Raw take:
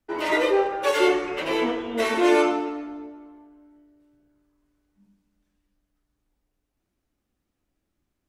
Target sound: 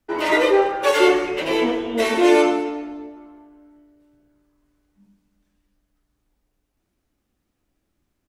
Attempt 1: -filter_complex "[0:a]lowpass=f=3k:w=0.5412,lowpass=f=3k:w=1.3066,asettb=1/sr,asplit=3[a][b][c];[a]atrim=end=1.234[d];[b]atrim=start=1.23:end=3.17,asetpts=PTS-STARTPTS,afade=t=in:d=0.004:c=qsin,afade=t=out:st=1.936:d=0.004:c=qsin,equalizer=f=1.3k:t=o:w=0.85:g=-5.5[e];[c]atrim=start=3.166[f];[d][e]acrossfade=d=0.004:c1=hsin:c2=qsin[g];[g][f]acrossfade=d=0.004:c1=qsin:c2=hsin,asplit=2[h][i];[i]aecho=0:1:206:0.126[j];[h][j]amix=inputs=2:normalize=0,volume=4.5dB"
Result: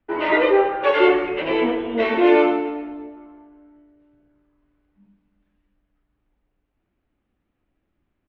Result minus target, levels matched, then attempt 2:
4000 Hz band -4.5 dB
-filter_complex "[0:a]asettb=1/sr,asplit=3[a][b][c];[a]atrim=end=1.234[d];[b]atrim=start=1.23:end=3.17,asetpts=PTS-STARTPTS,afade=t=in:d=0.004:c=qsin,afade=t=out:st=1.936:d=0.004:c=qsin,equalizer=f=1.3k:t=o:w=0.85:g=-5.5[e];[c]atrim=start=3.166[f];[d][e]acrossfade=d=0.004:c1=hsin:c2=qsin[g];[g][f]acrossfade=d=0.004:c1=qsin:c2=hsin,asplit=2[h][i];[i]aecho=0:1:206:0.126[j];[h][j]amix=inputs=2:normalize=0,volume=4.5dB"

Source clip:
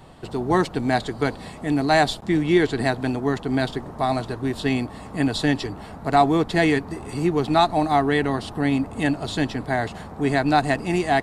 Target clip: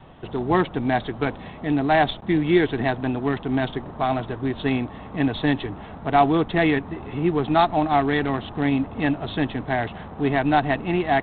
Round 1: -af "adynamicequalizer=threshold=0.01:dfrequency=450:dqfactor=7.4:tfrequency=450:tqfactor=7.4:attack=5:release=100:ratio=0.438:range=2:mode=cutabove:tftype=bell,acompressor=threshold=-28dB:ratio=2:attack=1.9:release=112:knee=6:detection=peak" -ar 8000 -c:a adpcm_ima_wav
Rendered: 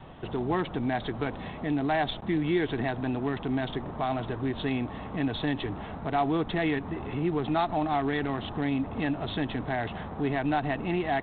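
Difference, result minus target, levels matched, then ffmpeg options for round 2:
compressor: peak gain reduction +10.5 dB
-af "adynamicequalizer=threshold=0.01:dfrequency=450:dqfactor=7.4:tfrequency=450:tqfactor=7.4:attack=5:release=100:ratio=0.438:range=2:mode=cutabove:tftype=bell" -ar 8000 -c:a adpcm_ima_wav

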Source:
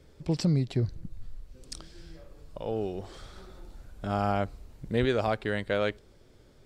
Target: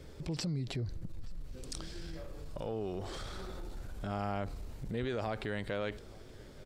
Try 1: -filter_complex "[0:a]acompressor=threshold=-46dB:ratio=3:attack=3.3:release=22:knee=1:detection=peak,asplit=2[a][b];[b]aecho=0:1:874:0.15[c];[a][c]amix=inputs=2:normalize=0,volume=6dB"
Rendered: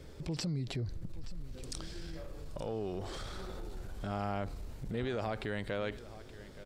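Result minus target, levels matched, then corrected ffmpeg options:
echo-to-direct +8.5 dB
-filter_complex "[0:a]acompressor=threshold=-46dB:ratio=3:attack=3.3:release=22:knee=1:detection=peak,asplit=2[a][b];[b]aecho=0:1:874:0.0562[c];[a][c]amix=inputs=2:normalize=0,volume=6dB"

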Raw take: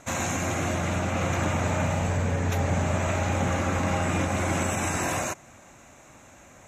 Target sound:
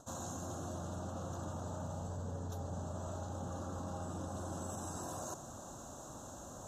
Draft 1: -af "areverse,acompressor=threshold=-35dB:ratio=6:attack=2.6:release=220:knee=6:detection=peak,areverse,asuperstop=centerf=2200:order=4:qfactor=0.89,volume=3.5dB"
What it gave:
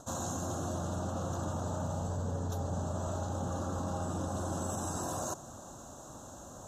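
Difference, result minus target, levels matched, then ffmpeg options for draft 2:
compressor: peak gain reduction -6.5 dB
-af "areverse,acompressor=threshold=-43dB:ratio=6:attack=2.6:release=220:knee=6:detection=peak,areverse,asuperstop=centerf=2200:order=4:qfactor=0.89,volume=3.5dB"

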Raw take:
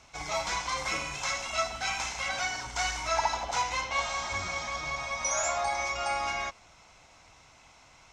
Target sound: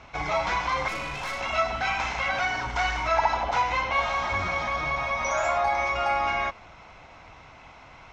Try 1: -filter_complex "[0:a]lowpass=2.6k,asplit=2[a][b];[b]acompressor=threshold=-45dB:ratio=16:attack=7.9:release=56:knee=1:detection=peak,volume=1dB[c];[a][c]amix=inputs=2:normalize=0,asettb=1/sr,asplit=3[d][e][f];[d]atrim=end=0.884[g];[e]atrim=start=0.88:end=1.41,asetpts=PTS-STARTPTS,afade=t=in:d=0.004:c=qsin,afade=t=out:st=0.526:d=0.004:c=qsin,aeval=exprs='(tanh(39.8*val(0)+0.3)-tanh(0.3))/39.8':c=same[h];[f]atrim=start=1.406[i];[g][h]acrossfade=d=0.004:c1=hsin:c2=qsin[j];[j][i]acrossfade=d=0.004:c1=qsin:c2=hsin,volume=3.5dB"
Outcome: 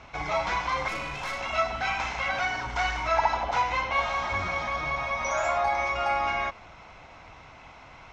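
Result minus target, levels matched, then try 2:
compressor: peak gain reduction +6 dB
-filter_complex "[0:a]lowpass=2.6k,asplit=2[a][b];[b]acompressor=threshold=-38.5dB:ratio=16:attack=7.9:release=56:knee=1:detection=peak,volume=1dB[c];[a][c]amix=inputs=2:normalize=0,asettb=1/sr,asplit=3[d][e][f];[d]atrim=end=0.884[g];[e]atrim=start=0.88:end=1.41,asetpts=PTS-STARTPTS,afade=t=in:d=0.004:c=qsin,afade=t=out:st=0.526:d=0.004:c=qsin,aeval=exprs='(tanh(39.8*val(0)+0.3)-tanh(0.3))/39.8':c=same[h];[f]atrim=start=1.406[i];[g][h]acrossfade=d=0.004:c1=hsin:c2=qsin[j];[j][i]acrossfade=d=0.004:c1=qsin:c2=hsin,volume=3.5dB"

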